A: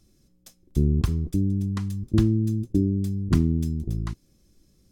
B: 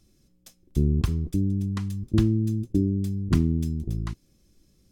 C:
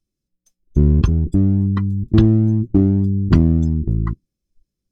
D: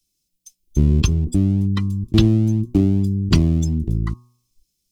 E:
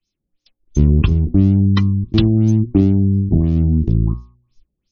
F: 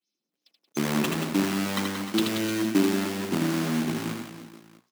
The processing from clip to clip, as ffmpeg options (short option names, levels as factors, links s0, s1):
-af "equalizer=f=2700:w=1.5:g=2.5,volume=0.891"
-filter_complex "[0:a]afftdn=nr=29:nf=-38,asplit=2[s0][s1];[s1]asoftclip=type=hard:threshold=0.0891,volume=0.531[s2];[s0][s2]amix=inputs=2:normalize=0,volume=2.11"
-filter_complex "[0:a]bandreject=f=121.6:t=h:w=4,bandreject=f=243.2:t=h:w=4,bandreject=f=364.8:t=h:w=4,bandreject=f=486.4:t=h:w=4,bandreject=f=608:t=h:w=4,bandreject=f=729.6:t=h:w=4,bandreject=f=851.2:t=h:w=4,bandreject=f=972.8:t=h:w=4,bandreject=f=1094.4:t=h:w=4,bandreject=f=1216:t=h:w=4,acrossover=split=190|730|840[s0][s1][s2][s3];[s3]aexciter=amount=2.6:drive=9.6:freq=2300[s4];[s0][s1][s2][s4]amix=inputs=4:normalize=0,volume=0.794"
-af "bandreject=f=60:t=h:w=6,bandreject=f=120:t=h:w=6,bandreject=f=180:t=h:w=6,dynaudnorm=f=110:g=3:m=2.24,afftfilt=real='re*lt(b*sr/1024,760*pow(7000/760,0.5+0.5*sin(2*PI*2.9*pts/sr)))':imag='im*lt(b*sr/1024,760*pow(7000/760,0.5+0.5*sin(2*PI*2.9*pts/sr)))':win_size=1024:overlap=0.75"
-filter_complex "[0:a]acrusher=bits=3:mode=log:mix=0:aa=0.000001,highpass=f=220:w=0.5412,highpass=f=220:w=1.3066,asplit=2[s0][s1];[s1]aecho=0:1:80|180|305|461.2|656.6:0.631|0.398|0.251|0.158|0.1[s2];[s0][s2]amix=inputs=2:normalize=0,volume=0.473"